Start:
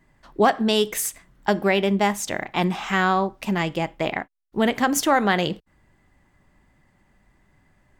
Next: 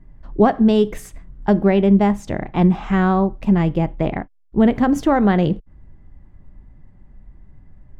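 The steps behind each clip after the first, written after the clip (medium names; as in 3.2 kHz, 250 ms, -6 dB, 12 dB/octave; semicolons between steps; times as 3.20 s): tilt EQ -4.5 dB/octave; trim -1 dB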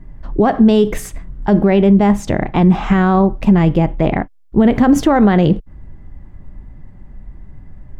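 loudness maximiser +11 dB; trim -2 dB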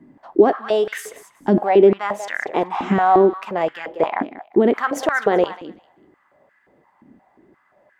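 thinning echo 190 ms, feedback 20%, high-pass 830 Hz, level -11.5 dB; hum 50 Hz, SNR 34 dB; step-sequenced high-pass 5.7 Hz 270–1600 Hz; trim -5.5 dB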